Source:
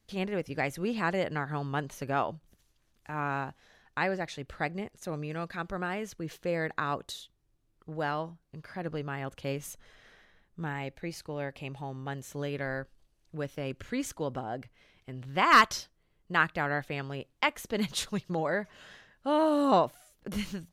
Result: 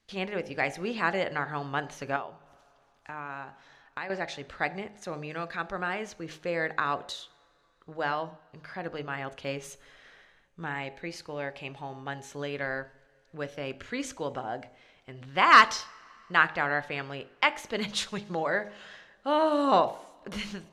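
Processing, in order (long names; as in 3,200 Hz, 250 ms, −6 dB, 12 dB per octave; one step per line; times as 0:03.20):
high-frequency loss of the air 67 metres
coupled-rooms reverb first 0.53 s, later 3.3 s, from −19 dB, DRR 16 dB
0:02.16–0:04.10: downward compressor 3 to 1, threshold −40 dBFS, peak gain reduction 12 dB
low-shelf EQ 390 Hz −10 dB
hum removal 51.55 Hz, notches 18
level +5 dB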